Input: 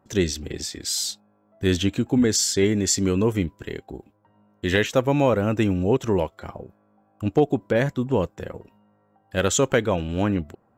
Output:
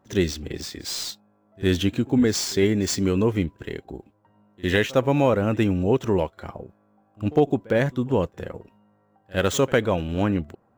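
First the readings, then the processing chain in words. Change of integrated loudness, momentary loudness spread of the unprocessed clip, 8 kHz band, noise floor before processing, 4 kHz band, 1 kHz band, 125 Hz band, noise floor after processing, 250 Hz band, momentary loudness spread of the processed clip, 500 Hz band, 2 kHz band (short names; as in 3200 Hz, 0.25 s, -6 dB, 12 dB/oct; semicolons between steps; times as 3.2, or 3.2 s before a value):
-0.5 dB, 17 LU, -6.5 dB, -64 dBFS, -2.0 dB, 0.0 dB, 0.0 dB, -64 dBFS, 0.0 dB, 16 LU, 0.0 dB, 0.0 dB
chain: median filter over 5 samples; pre-echo 57 ms -23 dB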